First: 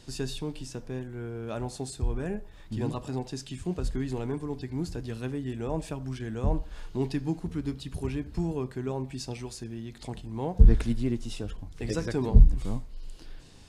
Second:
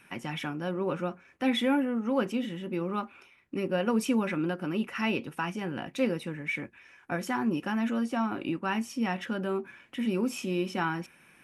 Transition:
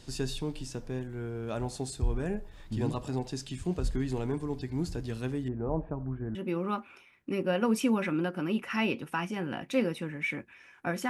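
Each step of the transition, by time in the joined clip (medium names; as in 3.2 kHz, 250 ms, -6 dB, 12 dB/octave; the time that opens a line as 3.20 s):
first
5.48–6.35 s: low-pass 1.3 kHz 24 dB/octave
6.35 s: go over to second from 2.60 s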